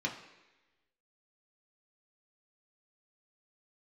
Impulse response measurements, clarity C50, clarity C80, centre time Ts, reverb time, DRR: 8.5 dB, 11.0 dB, 23 ms, 1.1 s, -1.0 dB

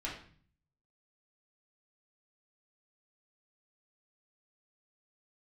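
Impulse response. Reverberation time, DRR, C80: 0.45 s, -5.0 dB, 9.5 dB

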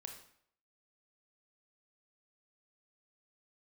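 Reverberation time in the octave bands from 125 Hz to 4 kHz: 0.65, 0.60, 0.65, 0.65, 0.60, 0.55 s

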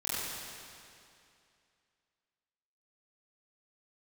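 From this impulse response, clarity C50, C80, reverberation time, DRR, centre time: -4.5 dB, -2.5 dB, 2.5 s, -9.5 dB, 0.176 s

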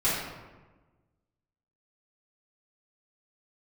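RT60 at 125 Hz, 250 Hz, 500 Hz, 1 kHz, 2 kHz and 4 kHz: 1.7, 1.5, 1.3, 1.2, 1.0, 0.70 s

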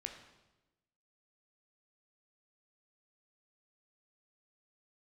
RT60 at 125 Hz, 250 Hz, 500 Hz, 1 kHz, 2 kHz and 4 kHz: 1.3, 1.2, 1.1, 0.95, 0.90, 0.90 s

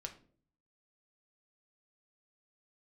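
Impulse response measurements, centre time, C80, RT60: 9 ms, 17.5 dB, 0.50 s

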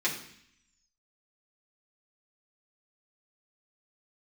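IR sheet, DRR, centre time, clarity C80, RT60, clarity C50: -6.5 dB, 23 ms, 10.5 dB, 0.65 s, 8.0 dB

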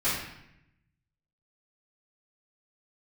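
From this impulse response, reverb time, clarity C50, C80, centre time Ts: 0.80 s, 1.0 dB, 4.5 dB, 61 ms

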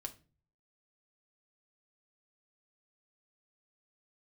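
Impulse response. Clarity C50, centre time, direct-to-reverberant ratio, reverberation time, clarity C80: 16.5 dB, 6 ms, 3.5 dB, 0.35 s, 22.5 dB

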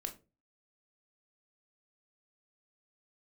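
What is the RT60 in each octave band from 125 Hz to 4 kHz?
0.50, 0.40, 0.35, 0.25, 0.20, 0.20 s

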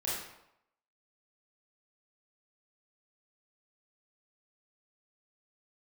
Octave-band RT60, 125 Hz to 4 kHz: 0.75, 0.70, 0.80, 0.85, 0.70, 0.60 s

